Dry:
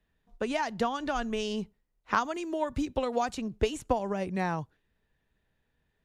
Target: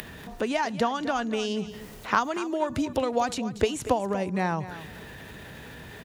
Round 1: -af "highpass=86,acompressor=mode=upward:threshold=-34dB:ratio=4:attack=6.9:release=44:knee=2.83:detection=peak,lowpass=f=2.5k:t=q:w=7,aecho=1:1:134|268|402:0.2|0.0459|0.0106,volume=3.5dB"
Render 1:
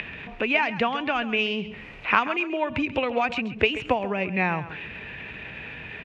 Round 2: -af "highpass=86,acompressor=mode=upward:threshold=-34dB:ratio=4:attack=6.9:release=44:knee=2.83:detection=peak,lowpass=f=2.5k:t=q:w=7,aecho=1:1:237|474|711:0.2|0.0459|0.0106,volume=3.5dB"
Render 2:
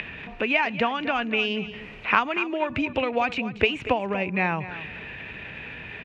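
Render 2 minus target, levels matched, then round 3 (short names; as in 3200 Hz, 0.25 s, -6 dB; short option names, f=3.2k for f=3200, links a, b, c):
2000 Hz band +6.0 dB
-af "highpass=86,acompressor=mode=upward:threshold=-34dB:ratio=4:attack=6.9:release=44:knee=2.83:detection=peak,aecho=1:1:237|474|711:0.2|0.0459|0.0106,volume=3.5dB"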